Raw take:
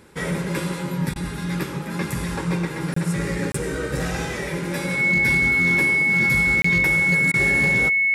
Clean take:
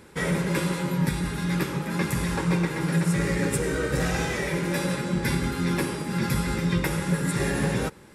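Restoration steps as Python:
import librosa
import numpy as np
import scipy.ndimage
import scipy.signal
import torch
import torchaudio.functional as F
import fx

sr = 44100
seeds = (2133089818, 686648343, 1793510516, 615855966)

y = fx.fix_declip(x, sr, threshold_db=-13.0)
y = fx.notch(y, sr, hz=2200.0, q=30.0)
y = fx.fix_interpolate(y, sr, at_s=(2.94, 3.52, 6.62), length_ms=24.0)
y = fx.fix_interpolate(y, sr, at_s=(1.14, 7.32), length_ms=17.0)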